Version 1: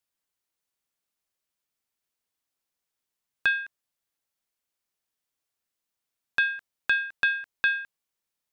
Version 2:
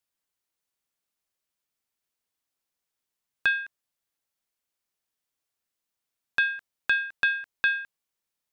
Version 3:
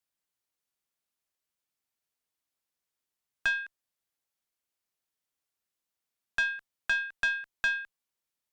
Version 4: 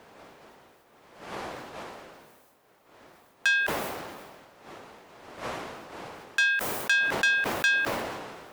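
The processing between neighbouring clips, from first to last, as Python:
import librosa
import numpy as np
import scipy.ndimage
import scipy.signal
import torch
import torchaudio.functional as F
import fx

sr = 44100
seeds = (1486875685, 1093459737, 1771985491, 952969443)

y1 = x
y2 = fx.tube_stage(y1, sr, drive_db=17.0, bias=0.3)
y2 = F.gain(torch.from_numpy(y2), -2.0).numpy()
y3 = fx.dmg_wind(y2, sr, seeds[0], corner_hz=620.0, level_db=-43.0)
y3 = fx.tilt_eq(y3, sr, slope=4.0)
y3 = fx.sustainer(y3, sr, db_per_s=33.0)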